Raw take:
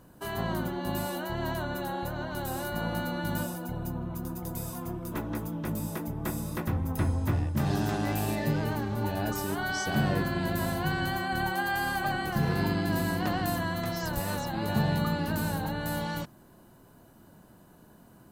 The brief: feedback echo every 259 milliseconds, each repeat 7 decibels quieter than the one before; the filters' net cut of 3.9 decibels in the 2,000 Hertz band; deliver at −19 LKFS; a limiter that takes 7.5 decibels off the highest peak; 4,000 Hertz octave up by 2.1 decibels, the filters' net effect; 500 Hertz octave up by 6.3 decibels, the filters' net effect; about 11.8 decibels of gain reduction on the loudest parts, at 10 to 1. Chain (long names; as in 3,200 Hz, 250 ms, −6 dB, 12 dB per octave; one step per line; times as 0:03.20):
parametric band 500 Hz +9 dB
parametric band 2,000 Hz −7.5 dB
parametric band 4,000 Hz +5 dB
downward compressor 10 to 1, threshold −33 dBFS
brickwall limiter −30.5 dBFS
repeating echo 259 ms, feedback 45%, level −7 dB
level +20 dB